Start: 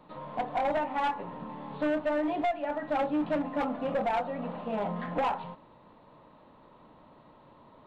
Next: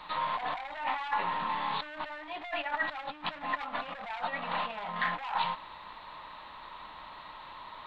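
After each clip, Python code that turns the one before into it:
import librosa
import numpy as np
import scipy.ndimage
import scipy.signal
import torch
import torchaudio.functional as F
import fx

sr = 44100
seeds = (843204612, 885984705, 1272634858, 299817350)

y = fx.over_compress(x, sr, threshold_db=-38.0, ratio=-1.0)
y = fx.graphic_eq_10(y, sr, hz=(125, 250, 500, 1000, 2000, 4000), db=(-12, -11, -10, 5, 7, 11))
y = y * 10.0 ** (3.0 / 20.0)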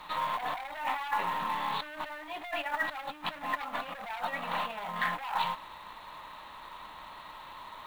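y = fx.quant_companded(x, sr, bits=6)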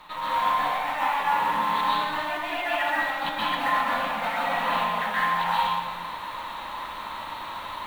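y = fx.rider(x, sr, range_db=3, speed_s=0.5)
y = fx.rev_plate(y, sr, seeds[0], rt60_s=1.4, hf_ratio=0.9, predelay_ms=115, drr_db=-8.0)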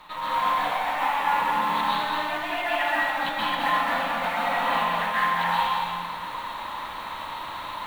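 y = x + 10.0 ** (-5.5 / 20.0) * np.pad(x, (int(214 * sr / 1000.0), 0))[:len(x)]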